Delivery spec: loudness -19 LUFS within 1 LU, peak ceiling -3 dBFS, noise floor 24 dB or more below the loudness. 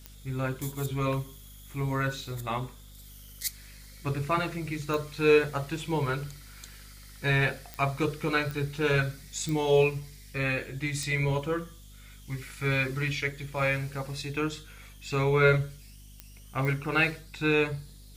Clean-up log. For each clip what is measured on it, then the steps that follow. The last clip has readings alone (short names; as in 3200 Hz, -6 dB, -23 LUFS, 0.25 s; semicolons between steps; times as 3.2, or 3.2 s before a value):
clicks 8; hum 50 Hz; harmonics up to 250 Hz; hum level -47 dBFS; loudness -29.0 LUFS; peak -10.0 dBFS; loudness target -19.0 LUFS
-> de-click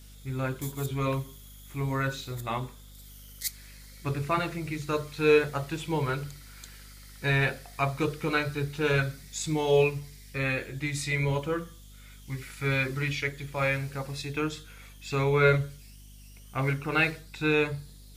clicks 0; hum 50 Hz; harmonics up to 250 Hz; hum level -47 dBFS
-> de-hum 50 Hz, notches 5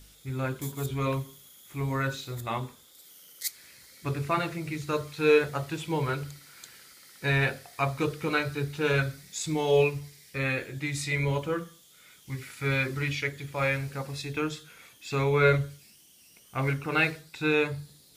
hum none; loudness -29.0 LUFS; peak -10.0 dBFS; loudness target -19.0 LUFS
-> gain +10 dB; limiter -3 dBFS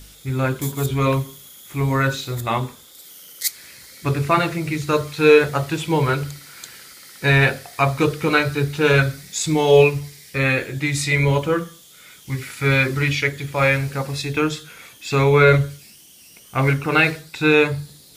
loudness -19.5 LUFS; peak -3.0 dBFS; noise floor -47 dBFS